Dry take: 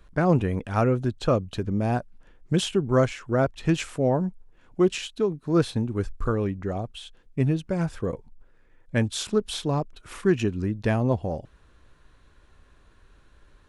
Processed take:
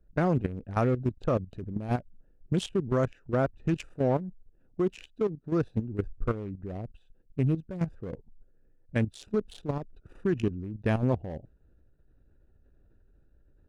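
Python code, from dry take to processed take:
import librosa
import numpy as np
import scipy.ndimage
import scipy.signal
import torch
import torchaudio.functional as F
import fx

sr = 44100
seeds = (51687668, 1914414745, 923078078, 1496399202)

y = fx.wiener(x, sr, points=41)
y = fx.level_steps(y, sr, step_db=12)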